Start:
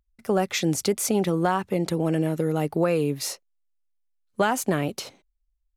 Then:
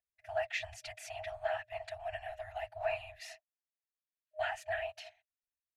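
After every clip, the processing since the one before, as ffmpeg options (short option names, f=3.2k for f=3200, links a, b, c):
-filter_complex "[0:a]asplit=3[a][b][c];[a]bandpass=f=530:t=q:w=8,volume=0dB[d];[b]bandpass=f=1.84k:t=q:w=8,volume=-6dB[e];[c]bandpass=f=2.48k:t=q:w=8,volume=-9dB[f];[d][e][f]amix=inputs=3:normalize=0,afftfilt=real='hypot(re,im)*cos(2*PI*random(0))':imag='hypot(re,im)*sin(2*PI*random(1))':win_size=512:overlap=0.75,afftfilt=real='re*(1-between(b*sr/4096,110,620))':imag='im*(1-between(b*sr/4096,110,620))':win_size=4096:overlap=0.75,volume=11dB"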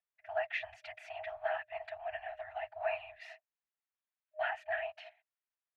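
-filter_complex "[0:a]acrossover=split=550 3000:gain=0.158 1 0.0631[a][b][c];[a][b][c]amix=inputs=3:normalize=0,volume=2.5dB"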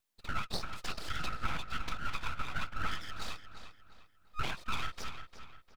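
-filter_complex "[0:a]acompressor=threshold=-42dB:ratio=6,aeval=exprs='abs(val(0))':c=same,asplit=2[a][b];[b]adelay=351,lowpass=f=4.7k:p=1,volume=-9.5dB,asplit=2[c][d];[d]adelay=351,lowpass=f=4.7k:p=1,volume=0.38,asplit=2[e][f];[f]adelay=351,lowpass=f=4.7k:p=1,volume=0.38,asplit=2[g][h];[h]adelay=351,lowpass=f=4.7k:p=1,volume=0.38[i];[c][e][g][i]amix=inputs=4:normalize=0[j];[a][j]amix=inputs=2:normalize=0,volume=12dB"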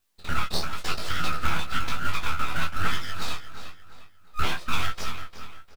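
-filter_complex "[0:a]asplit=2[a][b];[b]acrusher=bits=2:mode=log:mix=0:aa=0.000001,volume=-7.5dB[c];[a][c]amix=inputs=2:normalize=0,flanger=delay=20:depth=6.5:speed=1,asplit=2[d][e];[e]adelay=12,volume=-5dB[f];[d][f]amix=inputs=2:normalize=0,volume=8dB"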